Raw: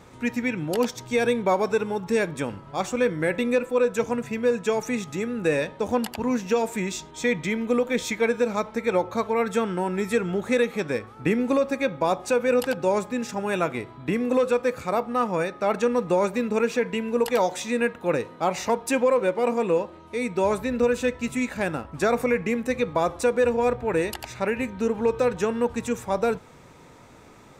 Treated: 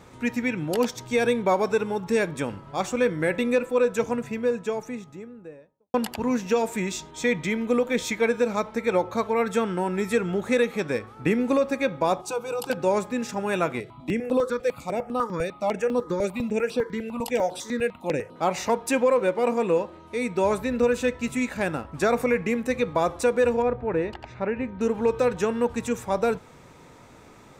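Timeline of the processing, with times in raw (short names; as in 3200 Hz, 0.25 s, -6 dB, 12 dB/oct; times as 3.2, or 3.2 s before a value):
3.86–5.94 studio fade out
12.21–12.7 fixed phaser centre 370 Hz, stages 8
13.8–18.36 step phaser 10 Hz 270–6700 Hz
23.62–24.81 tape spacing loss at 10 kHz 30 dB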